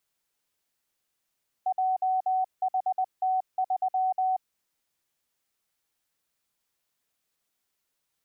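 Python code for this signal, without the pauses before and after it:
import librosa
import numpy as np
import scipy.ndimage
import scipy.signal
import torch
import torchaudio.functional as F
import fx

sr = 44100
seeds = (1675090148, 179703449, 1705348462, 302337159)

y = fx.morse(sr, text='JHT3', wpm=20, hz=750.0, level_db=-22.5)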